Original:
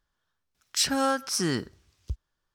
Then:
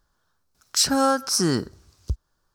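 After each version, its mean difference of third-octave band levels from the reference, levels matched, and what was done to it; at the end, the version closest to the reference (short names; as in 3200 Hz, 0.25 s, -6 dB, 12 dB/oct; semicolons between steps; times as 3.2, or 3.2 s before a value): 1.5 dB: in parallel at -1 dB: compressor, threshold -37 dBFS, peak gain reduction 15.5 dB; on the sum: band shelf 2500 Hz -8 dB 1.2 oct; gain +4 dB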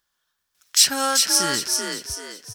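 9.5 dB: tilt +3 dB/oct; on a send: frequency-shifting echo 0.385 s, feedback 38%, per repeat +45 Hz, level -4 dB; on the sum: gain +2.5 dB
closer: first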